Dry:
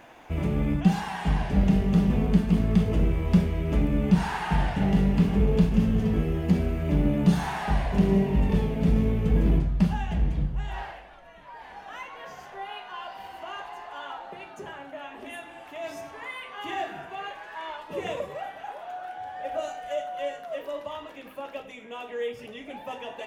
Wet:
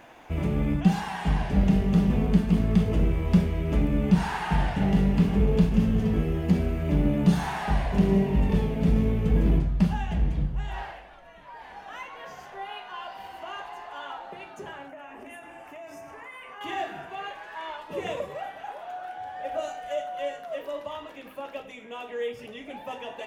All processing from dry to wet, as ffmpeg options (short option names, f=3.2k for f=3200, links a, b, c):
-filter_complex "[0:a]asettb=1/sr,asplit=3[a][b][c];[a]atrim=end=14.884[d];[b]atrim=start=14.88:end=16.61,asetpts=PTS-STARTPTS,afade=t=in:d=0.004:c=qsin,afade=t=out:st=1.726:d=0.004:c=qsin,equalizer=f=4k:w=3:g=-12.5,bandreject=f=3.3k:w=11,acompressor=threshold=-39dB:ratio=6:attack=3.2:release=140:knee=1:detection=peak[e];[c]atrim=start=16.606[f];[d][e]acrossfade=d=0.004:c1=hsin:c2=qsin[g];[g][f]acrossfade=d=0.004:c1=qsin:c2=hsin"